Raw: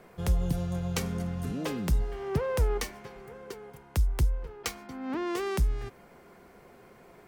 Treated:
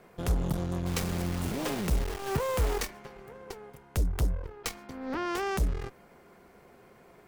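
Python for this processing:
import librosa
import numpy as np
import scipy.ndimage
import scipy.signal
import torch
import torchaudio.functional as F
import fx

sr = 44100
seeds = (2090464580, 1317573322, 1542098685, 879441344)

y = fx.cheby_harmonics(x, sr, harmonics=(8,), levels_db=(-15,), full_scale_db=-17.0)
y = fx.quant_dither(y, sr, seeds[0], bits=6, dither='none', at=(0.85, 2.85), fade=0.02)
y = F.gain(torch.from_numpy(y), -2.0).numpy()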